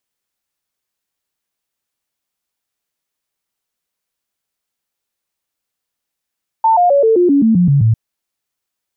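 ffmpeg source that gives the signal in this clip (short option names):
-f lavfi -i "aevalsrc='0.422*clip(min(mod(t,0.13),0.13-mod(t,0.13))/0.005,0,1)*sin(2*PI*894*pow(2,-floor(t/0.13)/3)*mod(t,0.13))':d=1.3:s=44100"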